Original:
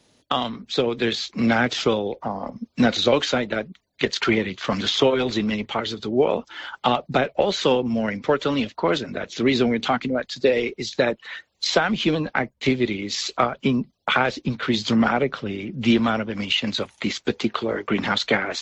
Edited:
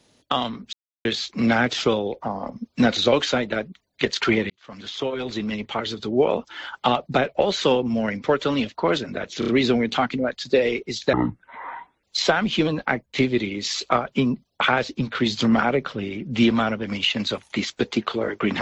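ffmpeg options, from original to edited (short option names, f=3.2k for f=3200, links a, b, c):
-filter_complex "[0:a]asplit=9[a][b][c][d][e][f][g][h][i];[a]atrim=end=0.73,asetpts=PTS-STARTPTS,afade=t=out:st=0.726:d=0.004:c=hsin[j];[b]atrim=start=0.73:end=1.05,asetpts=PTS-STARTPTS,volume=0[k];[c]atrim=start=1.05:end=4.5,asetpts=PTS-STARTPTS,afade=t=in:d=0.004:c=hsin,afade=t=out:st=3.446:d=0.004:c=hsin[l];[d]atrim=start=4.5:end=9.422,asetpts=PTS-STARTPTS,afade=t=in:d=1.49[m];[e]atrim=start=9.388:end=9.422[n];[f]atrim=start=9.388:end=9.422[o];[g]atrim=start=9.388:end=11.044[p];[h]atrim=start=11.04:end=11.51,asetpts=PTS-STARTPTS,asetrate=22932,aresample=44100[q];[i]atrim=start=11.506[r];[j][k][l][m]concat=n=4:v=0:a=1[s];[s][n]acrossfade=d=0.004:c1=hsin:c2=hsin[t];[t][o]acrossfade=d=0.004:c1=hsin:c2=hsin[u];[u][p]acrossfade=d=0.004:c1=hsin:c2=hsin[v];[v][q]acrossfade=d=0.004:c1=hsin:c2=hsin[w];[w][r]acrossfade=d=0.004:c1=hsin:c2=hsin"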